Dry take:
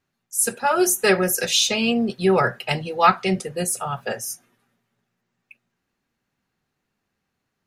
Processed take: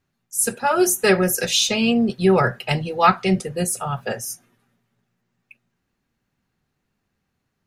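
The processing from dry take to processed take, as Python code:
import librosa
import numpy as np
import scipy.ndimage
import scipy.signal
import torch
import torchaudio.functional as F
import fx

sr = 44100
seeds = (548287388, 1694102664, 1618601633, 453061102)

y = fx.low_shelf(x, sr, hz=190.0, db=8.0)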